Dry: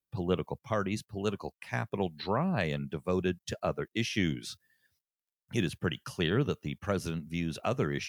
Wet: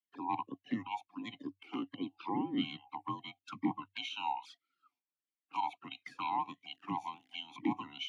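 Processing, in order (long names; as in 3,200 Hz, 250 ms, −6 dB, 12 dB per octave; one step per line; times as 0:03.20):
neighbouring bands swapped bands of 500 Hz
in parallel at −0.5 dB: brickwall limiter −23.5 dBFS, peak gain reduction 8 dB
on the sum: frequency shifter +97 Hz
0:06.69–0:07.46: surface crackle 150 per second −39 dBFS
flanger swept by the level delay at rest 9.7 ms, full sweep at −26.5 dBFS
formant filter swept between two vowels i-u 1.5 Hz
level +6 dB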